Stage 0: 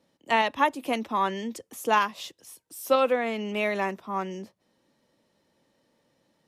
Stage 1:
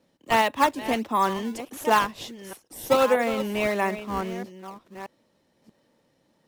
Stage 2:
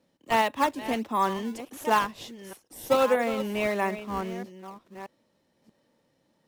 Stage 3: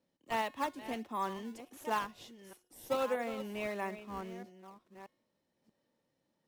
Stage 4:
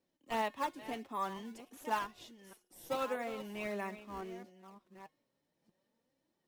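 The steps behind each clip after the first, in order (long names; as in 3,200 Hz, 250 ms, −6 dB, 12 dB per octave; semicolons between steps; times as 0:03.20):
delay that plays each chunk backwards 633 ms, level −12 dB; in parallel at −7 dB: sample-and-hold swept by an LFO 20×, swing 160% 1.5 Hz
harmonic and percussive parts rebalanced percussive −3 dB; level −2 dB
tuned comb filter 360 Hz, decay 0.69 s, mix 50%; level −5 dB
flanger 0.47 Hz, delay 2.5 ms, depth 5 ms, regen +46%; level +2.5 dB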